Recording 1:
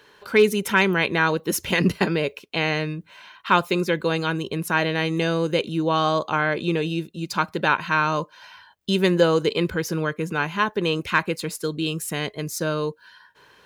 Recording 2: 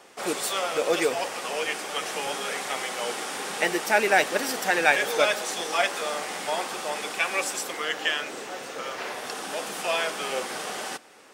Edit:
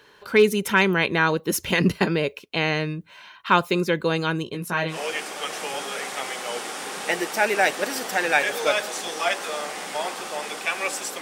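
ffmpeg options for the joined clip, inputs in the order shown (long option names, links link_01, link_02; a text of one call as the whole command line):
ffmpeg -i cue0.wav -i cue1.wav -filter_complex "[0:a]asettb=1/sr,asplit=3[link_01][link_02][link_03];[link_01]atrim=end=4.444[link_04];[link_02]atrim=start=4.44:end=4.99,asetpts=PTS-STARTPTS,afade=type=in:duration=0.004:curve=qsin,afade=type=out:start_time=0.546:duration=0.004:curve=qsin,flanger=delay=16.5:depth=7.3:speed=0.33[link_05];[link_03]atrim=start=4.986[link_06];[link_04][link_05]acrossfade=duration=0.004:curve1=hsin:curve2=qsin[link_07];[link_07][link_06]acrossfade=duration=0.004:curve1=qsin:curve2=hsin,apad=whole_dur=11.21,atrim=end=11.21,atrim=end=4.99,asetpts=PTS-STARTPTS[link_08];[1:a]atrim=start=1.4:end=7.74,asetpts=PTS-STARTPTS[link_09];[link_08][link_09]acrossfade=duration=0.12:curve1=tri:curve2=tri" out.wav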